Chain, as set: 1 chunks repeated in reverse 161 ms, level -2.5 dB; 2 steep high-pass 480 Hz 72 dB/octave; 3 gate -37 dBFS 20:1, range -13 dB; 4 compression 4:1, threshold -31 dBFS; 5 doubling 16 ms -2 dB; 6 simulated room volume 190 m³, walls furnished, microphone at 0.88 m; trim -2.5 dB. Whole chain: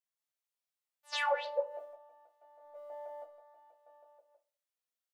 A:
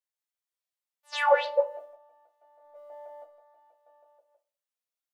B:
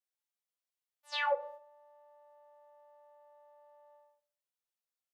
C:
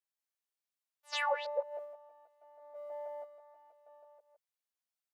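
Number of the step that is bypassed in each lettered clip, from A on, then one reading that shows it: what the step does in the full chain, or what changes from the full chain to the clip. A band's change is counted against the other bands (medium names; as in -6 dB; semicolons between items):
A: 4, mean gain reduction 2.0 dB; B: 1, momentary loudness spread change -10 LU; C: 6, echo-to-direct -5.0 dB to none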